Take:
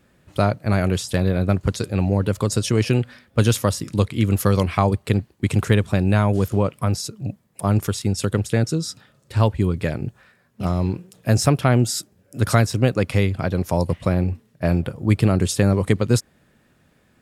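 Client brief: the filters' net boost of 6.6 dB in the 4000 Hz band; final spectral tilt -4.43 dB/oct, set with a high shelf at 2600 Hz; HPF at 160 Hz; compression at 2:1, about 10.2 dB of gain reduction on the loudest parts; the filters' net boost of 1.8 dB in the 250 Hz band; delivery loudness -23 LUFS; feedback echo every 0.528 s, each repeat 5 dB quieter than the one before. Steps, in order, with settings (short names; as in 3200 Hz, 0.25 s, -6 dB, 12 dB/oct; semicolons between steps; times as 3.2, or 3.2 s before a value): HPF 160 Hz; bell 250 Hz +4 dB; high shelf 2600 Hz +5.5 dB; bell 4000 Hz +3.5 dB; compressor 2:1, threshold -31 dBFS; feedback echo 0.528 s, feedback 56%, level -5 dB; gain +5.5 dB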